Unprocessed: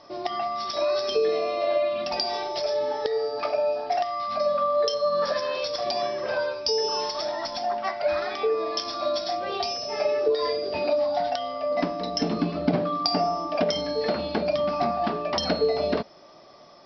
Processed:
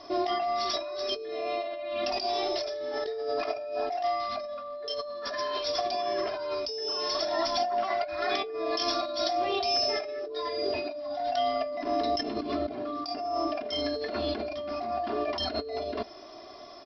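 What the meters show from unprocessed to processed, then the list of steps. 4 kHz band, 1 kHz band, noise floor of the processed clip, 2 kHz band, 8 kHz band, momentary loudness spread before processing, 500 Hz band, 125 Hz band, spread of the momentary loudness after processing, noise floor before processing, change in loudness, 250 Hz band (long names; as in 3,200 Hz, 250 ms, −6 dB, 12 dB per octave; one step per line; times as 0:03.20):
−2.0 dB, −3.0 dB, −45 dBFS, −3.5 dB, can't be measured, 4 LU, −6.0 dB, below −10 dB, 7 LU, −49 dBFS, −4.5 dB, −5.0 dB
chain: compressor whose output falls as the input rises −31 dBFS, ratio −1
comb filter 2.9 ms, depth 93%
level −3 dB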